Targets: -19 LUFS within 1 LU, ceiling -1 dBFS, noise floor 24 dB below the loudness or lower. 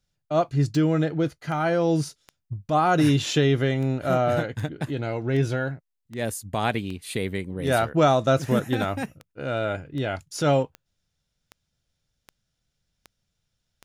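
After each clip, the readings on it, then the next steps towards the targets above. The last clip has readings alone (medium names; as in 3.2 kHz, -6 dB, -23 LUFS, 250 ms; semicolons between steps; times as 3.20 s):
clicks found 18; loudness -24.5 LUFS; peak level -9.0 dBFS; loudness target -19.0 LUFS
-> de-click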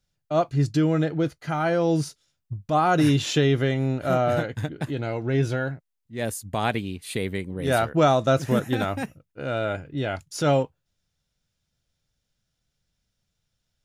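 clicks found 0; loudness -24.5 LUFS; peak level -9.0 dBFS; loudness target -19.0 LUFS
-> trim +5.5 dB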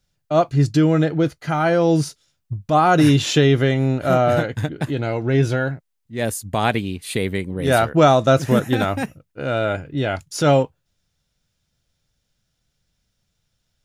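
loudness -19.0 LUFS; peak level -3.5 dBFS; noise floor -73 dBFS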